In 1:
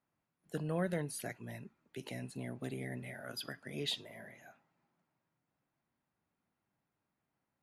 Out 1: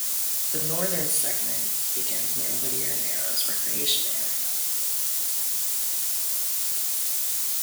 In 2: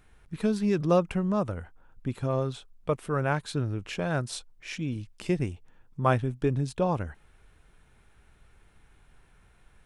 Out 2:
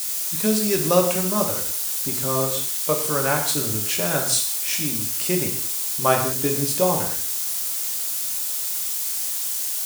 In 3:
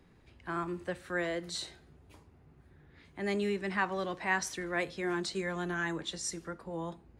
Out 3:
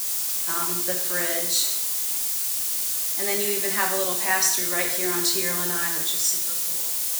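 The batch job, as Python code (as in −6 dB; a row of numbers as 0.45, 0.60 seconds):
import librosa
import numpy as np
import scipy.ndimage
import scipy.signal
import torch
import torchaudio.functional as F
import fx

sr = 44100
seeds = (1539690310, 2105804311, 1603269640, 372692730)

p1 = fx.fade_out_tail(x, sr, length_s=1.64)
p2 = fx.quant_dither(p1, sr, seeds[0], bits=6, dither='triangular')
p3 = p1 + (p2 * 10.0 ** (-5.0 / 20.0))
p4 = scipy.signal.sosfilt(scipy.signal.butter(2, 74.0, 'highpass', fs=sr, output='sos'), p3)
p5 = fx.bass_treble(p4, sr, bass_db=-8, treble_db=14)
y = fx.rev_gated(p5, sr, seeds[1], gate_ms=230, shape='falling', drr_db=1.5)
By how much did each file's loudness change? +19.0, +8.5, +13.5 LU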